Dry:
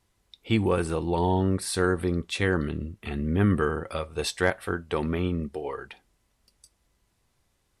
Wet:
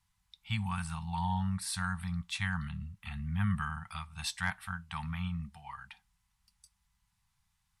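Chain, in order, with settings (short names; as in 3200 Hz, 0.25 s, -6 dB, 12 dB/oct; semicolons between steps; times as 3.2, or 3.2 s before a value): elliptic band-stop 190–840 Hz, stop band 40 dB; gain -5.5 dB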